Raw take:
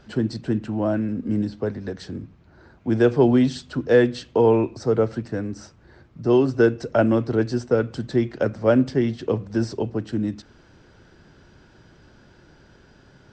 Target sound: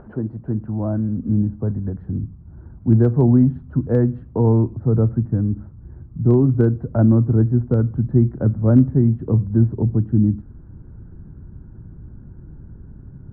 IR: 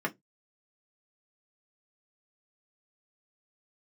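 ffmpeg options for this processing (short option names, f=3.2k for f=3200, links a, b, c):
-af "lowpass=f=1.2k:w=0.5412,lowpass=f=1.2k:w=1.3066,asubboost=boost=12:cutoff=180,acompressor=mode=upward:threshold=-32dB:ratio=2.5,volume=-2.5dB"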